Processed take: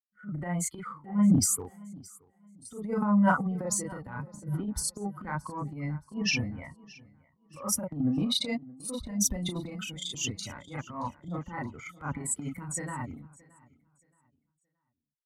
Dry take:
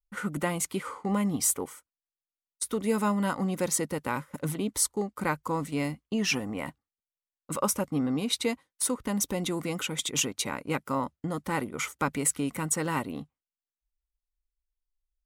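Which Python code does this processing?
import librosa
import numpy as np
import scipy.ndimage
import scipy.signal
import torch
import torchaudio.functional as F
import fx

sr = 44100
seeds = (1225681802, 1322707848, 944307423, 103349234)

p1 = fx.bin_expand(x, sr, power=2.0)
p2 = scipy.signal.sosfilt(scipy.signal.butter(2, 9700.0, 'lowpass', fs=sr, output='sos'), p1)
p3 = fx.low_shelf(p2, sr, hz=210.0, db=7.5)
p4 = fx.doubler(p3, sr, ms=34.0, db=-2.5)
p5 = fx.transient(p4, sr, attack_db=-11, sustain_db=9)
p6 = fx.dynamic_eq(p5, sr, hz=360.0, q=2.0, threshold_db=-45.0, ratio=4.0, max_db=-6)
p7 = p6 + fx.echo_feedback(p6, sr, ms=623, feedback_pct=41, wet_db=-17.0, dry=0)
p8 = fx.band_widen(p7, sr, depth_pct=40)
y = F.gain(torch.from_numpy(p8), -1.0).numpy()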